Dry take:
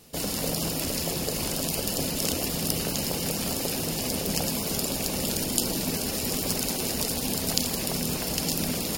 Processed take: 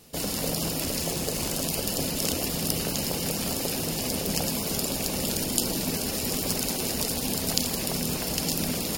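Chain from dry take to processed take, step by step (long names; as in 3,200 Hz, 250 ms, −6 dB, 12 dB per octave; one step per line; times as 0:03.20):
0:01.00–0:01.65: bad sample-rate conversion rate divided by 2×, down none, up hold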